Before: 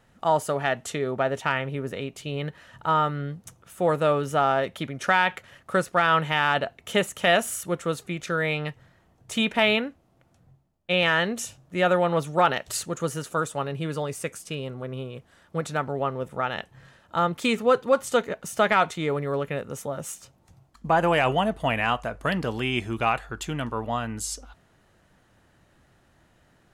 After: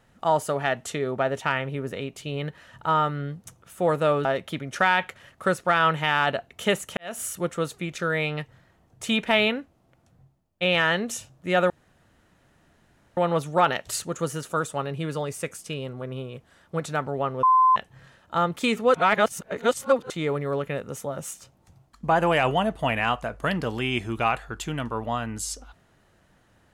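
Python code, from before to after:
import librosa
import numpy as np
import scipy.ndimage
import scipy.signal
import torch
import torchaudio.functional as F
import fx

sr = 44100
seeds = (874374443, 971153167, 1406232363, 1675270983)

y = fx.edit(x, sr, fx.cut(start_s=4.25, length_s=0.28),
    fx.fade_in_span(start_s=7.25, length_s=0.25, curve='qua'),
    fx.insert_room_tone(at_s=11.98, length_s=1.47),
    fx.bleep(start_s=16.24, length_s=0.33, hz=1030.0, db=-14.0),
    fx.reverse_span(start_s=17.75, length_s=1.16), tone=tone)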